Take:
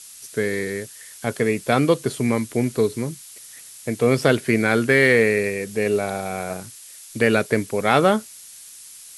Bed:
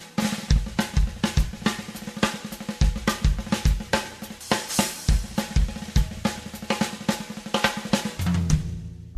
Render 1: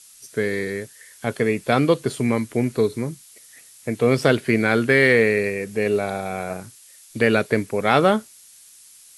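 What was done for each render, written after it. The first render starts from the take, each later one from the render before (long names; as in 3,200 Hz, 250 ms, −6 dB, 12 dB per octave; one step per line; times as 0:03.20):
noise reduction from a noise print 6 dB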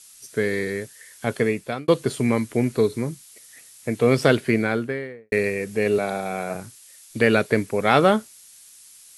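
0:01.42–0:01.88: fade out
0:04.33–0:05.32: fade out and dull
0:05.98–0:06.55: high-pass filter 120 Hz 24 dB per octave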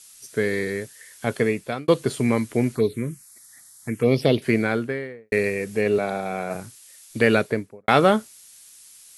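0:02.75–0:04.42: phaser swept by the level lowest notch 440 Hz, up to 1,500 Hz, full sweep at −14 dBFS
0:05.81–0:06.51: high-shelf EQ 6,000 Hz −8 dB
0:07.32–0:07.88: fade out and dull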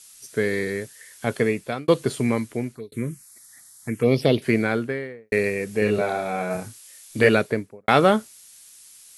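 0:01.97–0:02.92: fade out equal-power
0:05.79–0:07.29: double-tracking delay 28 ms −3 dB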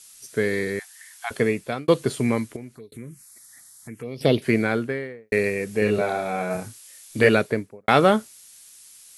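0:00.79–0:01.31: linear-phase brick-wall high-pass 680 Hz
0:02.56–0:04.21: downward compressor 2 to 1, threshold −42 dBFS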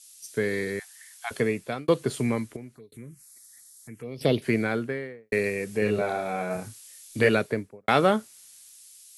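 downward compressor 1.5 to 1, threshold −28 dBFS, peak gain reduction 6.5 dB
multiband upward and downward expander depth 40%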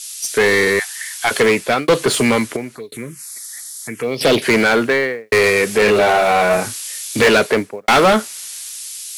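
mid-hump overdrive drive 27 dB, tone 6,900 Hz, clips at −6.5 dBFS
in parallel at −10 dB: floating-point word with a short mantissa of 2 bits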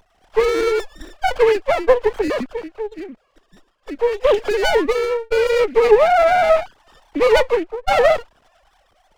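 three sine waves on the formant tracks
windowed peak hold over 17 samples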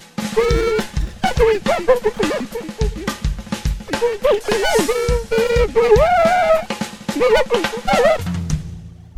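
mix in bed +0.5 dB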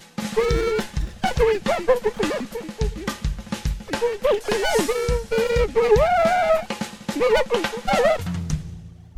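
level −4.5 dB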